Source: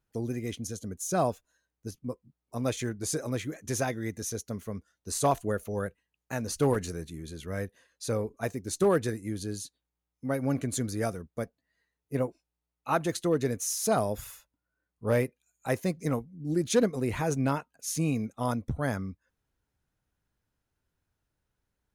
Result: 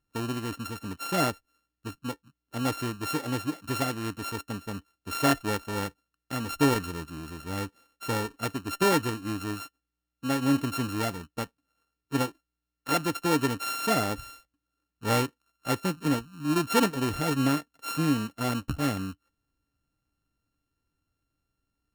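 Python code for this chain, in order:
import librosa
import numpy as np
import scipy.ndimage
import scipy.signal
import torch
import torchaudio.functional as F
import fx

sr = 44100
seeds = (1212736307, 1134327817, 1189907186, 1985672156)

y = np.r_[np.sort(x[:len(x) // 32 * 32].reshape(-1, 32), axis=1).ravel(), x[len(x) // 32 * 32:]]
y = fx.small_body(y, sr, hz=(290.0, 1800.0, 3000.0), ring_ms=85, db=10)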